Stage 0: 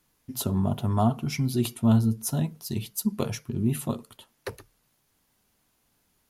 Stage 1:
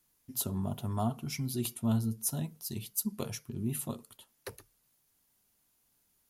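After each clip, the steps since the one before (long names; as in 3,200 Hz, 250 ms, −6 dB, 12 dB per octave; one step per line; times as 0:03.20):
high-shelf EQ 5,700 Hz +10.5 dB
level −9 dB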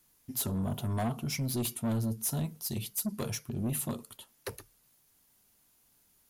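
soft clipping −32.5 dBFS, distortion −9 dB
level +5.5 dB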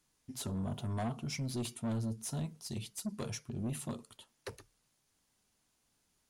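Savitzky-Golay smoothing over 9 samples
level −4.5 dB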